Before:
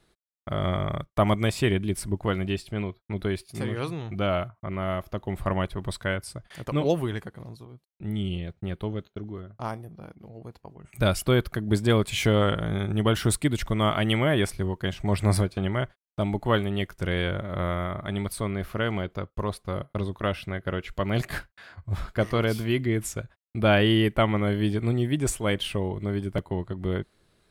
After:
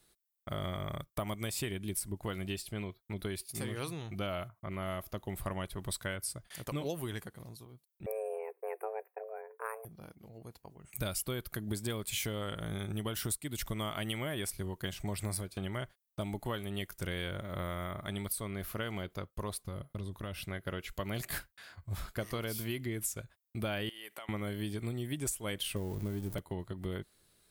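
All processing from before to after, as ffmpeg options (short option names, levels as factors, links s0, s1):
-filter_complex "[0:a]asettb=1/sr,asplit=3[s0][s1][s2];[s0]atrim=end=8.064[s3];[s1]atrim=start=8.06:end=9.85,asetpts=PTS-STARTPTS,afade=t=in:d=0.004:c=qsin,afade=t=out:st=1.786:d=0.004:c=qsin,afreqshift=330,asuperstop=centerf=4700:order=20:qfactor=0.83[s4];[s2]atrim=start=9.846[s5];[s3][s4]acrossfade=d=0.004:c1=hsin:c2=qsin[s6];[s6][s5]acrossfade=d=0.004:c1=qsin:c2=hsin,asettb=1/sr,asplit=3[s7][s8][s9];[s7]atrim=end=19.674[s10];[s8]atrim=start=19.67:end=20.46,asetpts=PTS-STARTPTS,afade=t=in:d=0.004:c=qsin,afade=t=out:st=0.786:d=0.004:c=qsin,acompressor=threshold=0.02:ratio=3:attack=3.2:release=140:knee=1:detection=peak,lowshelf=f=210:g=8.5[s11];[s9]atrim=start=20.456[s12];[s10][s11]acrossfade=d=0.004:c1=hsin:c2=qsin[s13];[s13][s12]acrossfade=d=0.004:c1=qsin:c2=hsin,asettb=1/sr,asplit=3[s14][s15][s16];[s14]atrim=end=23.894[s17];[s15]atrim=start=23.89:end=24.29,asetpts=PTS-STARTPTS,afade=t=in:d=0.004:c=qsin,afade=t=out:st=0.396:d=0.004:c=qsin,highpass=690,acompressor=threshold=0.0141:ratio=6:attack=3.2:release=140:knee=1:detection=peak[s18];[s16]atrim=start=24.286[s19];[s17][s18]acrossfade=d=0.004:c1=hsin:c2=qsin[s20];[s20][s19]acrossfade=d=0.004:c1=qsin:c2=hsin,asettb=1/sr,asplit=3[s21][s22][s23];[s21]atrim=end=25.764[s24];[s22]atrim=start=25.76:end=26.35,asetpts=PTS-STARTPTS,afade=t=in:d=0.004:c=qsin,afade=t=out:st=0.586:d=0.004:c=qsin,aeval=exprs='val(0)+0.5*0.0188*sgn(val(0))':c=same,tiltshelf=f=780:g=5[s25];[s23]atrim=start=26.346[s26];[s24][s25]acrossfade=d=0.004:c1=hsin:c2=qsin[s27];[s27][s26]acrossfade=d=0.004:c1=qsin:c2=hsin,aemphasis=mode=production:type=75fm,acompressor=threshold=0.0562:ratio=12,volume=0.447"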